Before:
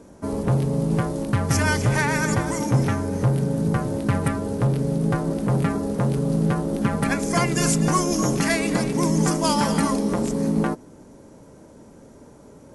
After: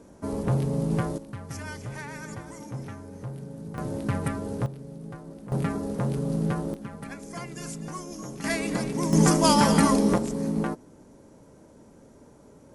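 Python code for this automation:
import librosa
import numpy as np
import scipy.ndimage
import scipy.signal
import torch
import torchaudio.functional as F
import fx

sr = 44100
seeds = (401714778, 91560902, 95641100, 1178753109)

y = fx.gain(x, sr, db=fx.steps((0.0, -4.0), (1.18, -16.5), (3.78, -6.0), (4.66, -18.0), (5.52, -5.5), (6.74, -16.5), (8.44, -6.0), (9.13, 1.5), (10.18, -5.5)))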